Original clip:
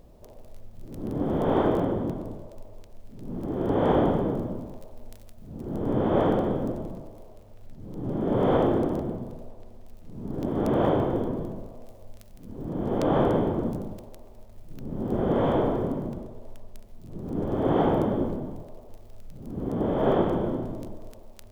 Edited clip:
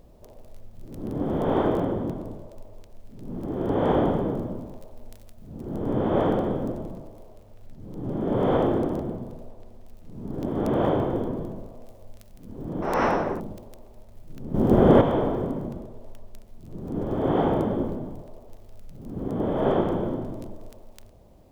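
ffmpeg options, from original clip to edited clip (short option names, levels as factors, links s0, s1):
-filter_complex "[0:a]asplit=5[s0][s1][s2][s3][s4];[s0]atrim=end=12.824[s5];[s1]atrim=start=12.82:end=13.81,asetpts=PTS-STARTPTS,asetrate=74970,aresample=44100[s6];[s2]atrim=start=13.806:end=14.952[s7];[s3]atrim=start=14.948:end=15.422,asetpts=PTS-STARTPTS,volume=2.82[s8];[s4]atrim=start=15.418[s9];[s5][s6]acrossfade=d=0.004:c1=hsin:c2=hsin[s10];[s10][s7]acrossfade=d=0.004:c1=hsin:c2=hsin[s11];[s11][s8]acrossfade=d=0.004:c1=hsin:c2=hsin[s12];[s12][s9]acrossfade=d=0.004:c1=hsin:c2=hsin"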